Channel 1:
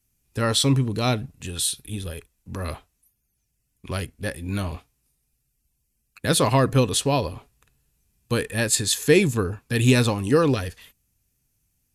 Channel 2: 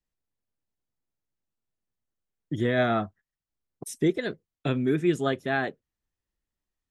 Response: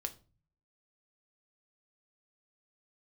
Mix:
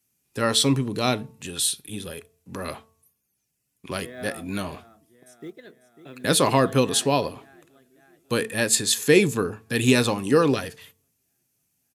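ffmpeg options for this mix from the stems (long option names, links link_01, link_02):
-filter_complex "[0:a]volume=-1dB,asplit=2[link_01][link_02];[link_02]volume=-10.5dB[link_03];[1:a]acrusher=bits=8:mode=log:mix=0:aa=0.000001,adelay=1400,volume=-15dB,asplit=2[link_04][link_05];[link_05]volume=-12.5dB[link_06];[2:a]atrim=start_sample=2205[link_07];[link_03][link_07]afir=irnorm=-1:irlink=0[link_08];[link_06]aecho=0:1:547|1094|1641|2188|2735|3282|3829|4376|4923:1|0.59|0.348|0.205|0.121|0.0715|0.0422|0.0249|0.0147[link_09];[link_01][link_04][link_08][link_09]amix=inputs=4:normalize=0,highpass=170,bandreject=frequency=222.5:width_type=h:width=4,bandreject=frequency=445:width_type=h:width=4,bandreject=frequency=667.5:width_type=h:width=4,bandreject=frequency=890:width_type=h:width=4,bandreject=frequency=1112.5:width_type=h:width=4"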